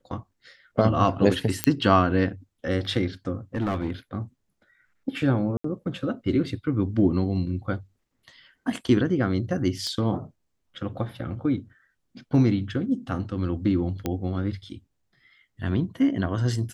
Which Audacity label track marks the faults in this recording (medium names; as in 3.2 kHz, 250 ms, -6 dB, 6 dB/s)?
1.640000	1.640000	pop -4 dBFS
3.550000	3.900000	clipped -21.5 dBFS
5.570000	5.640000	dropout 74 ms
9.870000	9.870000	pop -21 dBFS
14.060000	14.060000	pop -13 dBFS